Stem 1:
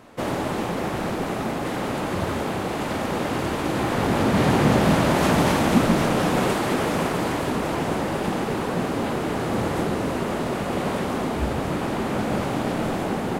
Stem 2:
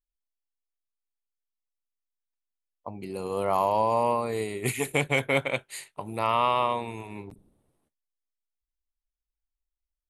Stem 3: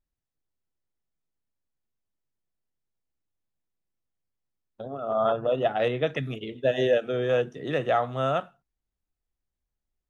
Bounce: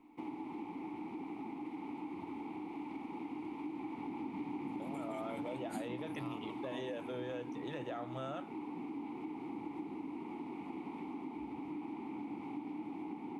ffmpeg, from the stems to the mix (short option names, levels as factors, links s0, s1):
-filter_complex "[0:a]asplit=3[s0][s1][s2];[s0]bandpass=f=300:t=q:w=8,volume=1[s3];[s1]bandpass=f=870:t=q:w=8,volume=0.501[s4];[s2]bandpass=f=2240:t=q:w=8,volume=0.355[s5];[s3][s4][s5]amix=inputs=3:normalize=0,aexciter=amount=1.9:drive=6.7:freq=9300,volume=0.75[s6];[1:a]alimiter=limit=0.126:level=0:latency=1:release=14,volume=0.335[s7];[2:a]volume=0.668,asplit=2[s8][s9];[s9]apad=whole_len=445374[s10];[s7][s10]sidechaingate=range=0.0224:threshold=0.0158:ratio=16:detection=peak[s11];[s11][s8]amix=inputs=2:normalize=0,highshelf=f=5200:g=8,alimiter=limit=0.0631:level=0:latency=1:release=41,volume=1[s12];[s6][s12]amix=inputs=2:normalize=0,acompressor=threshold=0.00794:ratio=3"